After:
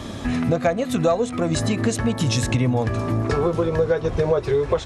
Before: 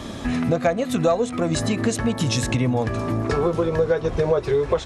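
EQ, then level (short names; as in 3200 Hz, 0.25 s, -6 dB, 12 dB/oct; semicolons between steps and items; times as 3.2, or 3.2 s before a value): bell 95 Hz +4 dB 0.77 oct; 0.0 dB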